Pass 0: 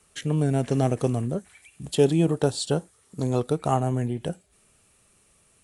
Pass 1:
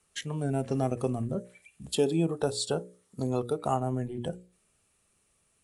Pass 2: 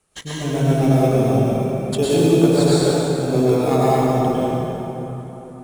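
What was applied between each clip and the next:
spectral noise reduction 9 dB; notches 60/120/180/240/300/360/420/480/540/600 Hz; compressor 1.5:1, threshold -30 dBFS, peak gain reduction 5.5 dB
in parallel at -7.5 dB: sample-and-hold 15×; on the sum: plate-style reverb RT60 3.8 s, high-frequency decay 0.6×, pre-delay 90 ms, DRR -9 dB; gain +1 dB

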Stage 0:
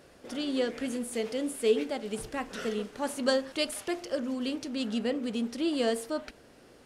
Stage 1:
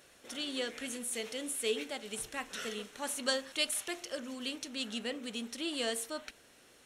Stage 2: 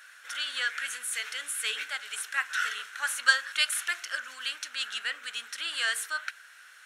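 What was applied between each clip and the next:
tilt shelf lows -7.5 dB, about 1300 Hz; notch 4800 Hz, Q 6.4; gain -3.5 dB
resonant high-pass 1500 Hz, resonance Q 5.7; gain +4 dB

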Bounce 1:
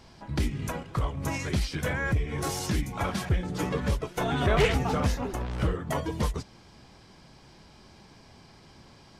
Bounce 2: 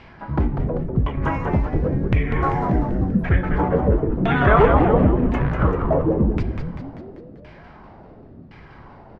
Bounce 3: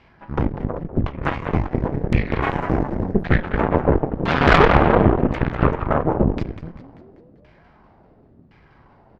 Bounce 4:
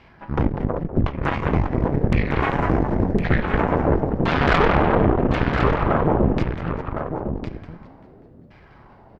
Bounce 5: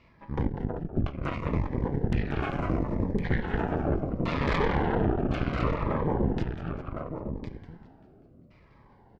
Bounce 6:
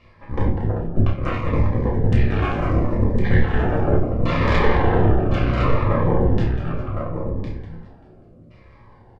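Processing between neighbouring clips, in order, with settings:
LFO low-pass saw down 0.94 Hz 210–2500 Hz; spectral delete 2.87–3.24, 430–10000 Hz; frequency-shifting echo 0.195 s, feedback 56%, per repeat -110 Hz, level -5 dB; gain +7 dB
added harmonics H 4 -6 dB, 7 -21 dB, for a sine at -2 dBFS; soft clip 0 dBFS, distortion -20 dB
limiter -10 dBFS, peak gain reduction 8.5 dB; on a send: echo 1.058 s -7.5 dB; on the sum: gain +3 dB
cascading phaser falling 0.7 Hz; gain -7.5 dB
doubler 30 ms -6.5 dB; reverb RT60 0.45 s, pre-delay 4 ms, DRR 0.5 dB; downsampling 22050 Hz; gain +3.5 dB

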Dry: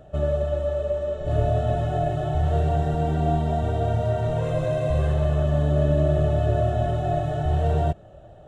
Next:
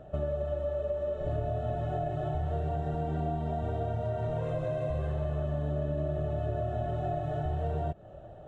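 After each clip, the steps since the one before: low shelf 120 Hz -3.5 dB; compressor 5:1, threshold -29 dBFS, peak gain reduction 11 dB; high shelf 3300 Hz -11 dB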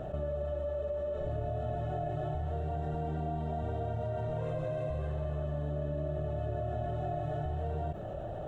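fast leveller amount 70%; gain -4.5 dB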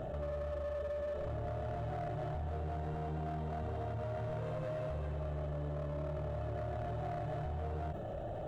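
hard clip -32.5 dBFS, distortion -13 dB; limiter -40.5 dBFS, peak gain reduction 8 dB; gain +5.5 dB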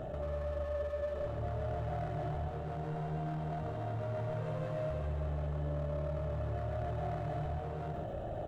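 echo 0.135 s -4.5 dB

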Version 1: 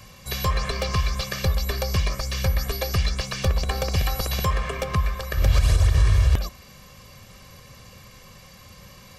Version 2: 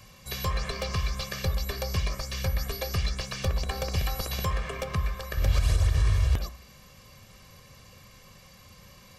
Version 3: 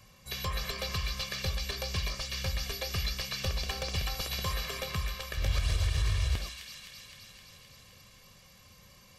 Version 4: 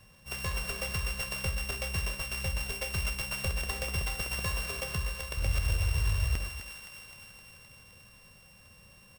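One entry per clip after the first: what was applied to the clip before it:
de-hum 62 Hz, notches 33; gain -5 dB
dynamic EQ 3200 Hz, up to +6 dB, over -50 dBFS, Q 0.73; thin delay 0.259 s, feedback 70%, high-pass 2400 Hz, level -3 dB; gain -6 dB
sample sorter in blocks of 16 samples; outdoor echo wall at 42 m, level -14 dB

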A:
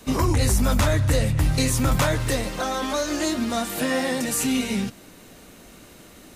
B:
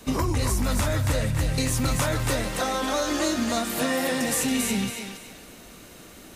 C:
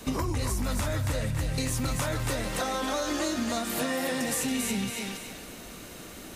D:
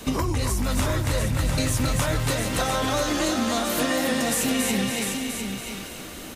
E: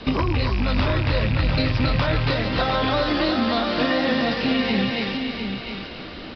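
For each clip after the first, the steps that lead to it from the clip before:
compressor, threshold -21 dBFS, peak gain reduction 5.5 dB; thinning echo 0.277 s, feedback 31%, high-pass 620 Hz, level -3.5 dB
compressor 2.5:1, threshold -32 dBFS, peak gain reduction 8.5 dB; gain +2.5 dB
bell 3100 Hz +2.5 dB 0.39 oct; on a send: echo 0.701 s -6 dB; on the sum: gain +4.5 dB
rattling part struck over -23 dBFS, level -22 dBFS; downsampling 11025 Hz; gain +3 dB

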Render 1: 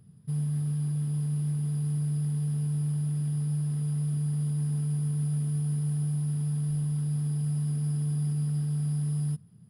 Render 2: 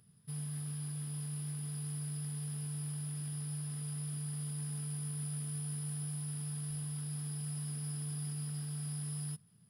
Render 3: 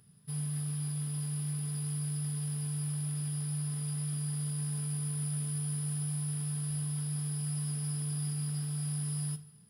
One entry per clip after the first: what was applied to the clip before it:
tilt shelf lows -7.5 dB, about 750 Hz; gain -5 dB
two-slope reverb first 0.33 s, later 1.9 s, from -17 dB, DRR 7 dB; gain +3 dB

